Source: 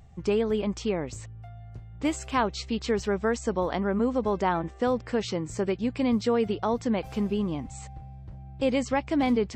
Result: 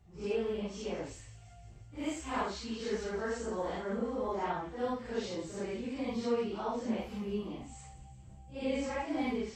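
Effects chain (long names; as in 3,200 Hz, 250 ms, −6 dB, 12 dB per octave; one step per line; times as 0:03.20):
random phases in long frames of 200 ms
dynamic equaliser 130 Hz, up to −6 dB, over −44 dBFS, Q 1.3
delay with a high-pass on its return 172 ms, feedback 66%, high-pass 2,000 Hz, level −13 dB
level −8 dB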